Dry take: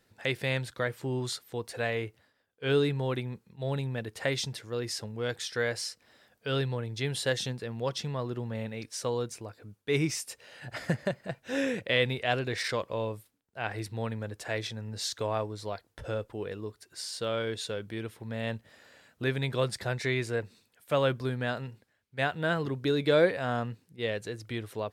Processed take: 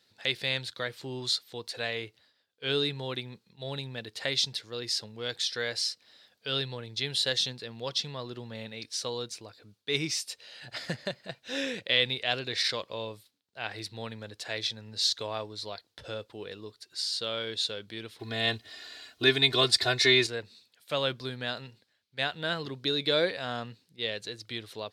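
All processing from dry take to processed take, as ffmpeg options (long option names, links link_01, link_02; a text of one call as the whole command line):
ffmpeg -i in.wav -filter_complex "[0:a]asettb=1/sr,asplit=3[link_01][link_02][link_03];[link_01]atrim=end=18.194[link_04];[link_02]atrim=start=18.19:end=20.27,asetpts=PTS-STARTPTS,afade=type=in:duration=0.004:curve=qsin,afade=type=out:start_time=2.076:duration=0.004:curve=qsin,aecho=1:1:2.8:0.95,atrim=end_sample=91728,acontrast=50[link_05];[link_03]atrim=start=20.266[link_06];[link_04][link_05]acrossfade=duration=0.004:curve1=hsin:curve2=qsin[link_07];[link_07][link_06]acrossfade=duration=0.004:curve1=qsin:curve2=hsin,highpass=frequency=140:poles=1,equalizer=frequency=4100:width=1.2:gain=15,volume=-4.5dB" out.wav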